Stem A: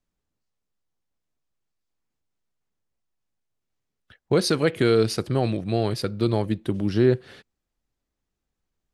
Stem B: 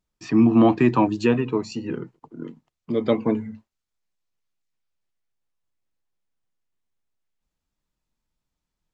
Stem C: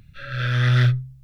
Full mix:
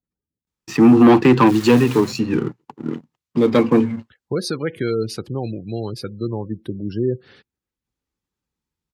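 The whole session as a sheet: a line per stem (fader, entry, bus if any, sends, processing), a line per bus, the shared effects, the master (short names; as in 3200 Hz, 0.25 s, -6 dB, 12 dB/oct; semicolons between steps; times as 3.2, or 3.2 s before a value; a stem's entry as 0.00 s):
-2.0 dB, 0.00 s, no send, spectral gate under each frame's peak -25 dB strong
+2.0 dB, 0.45 s, no send, sample leveller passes 2; vibrato 0.36 Hz 78 cents
-9.5 dB, 1.15 s, no send, limiter -17.5 dBFS, peak gain reduction 8 dB; wrapped overs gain 22.5 dB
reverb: off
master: HPF 62 Hz; bell 650 Hz -12 dB 0.21 oct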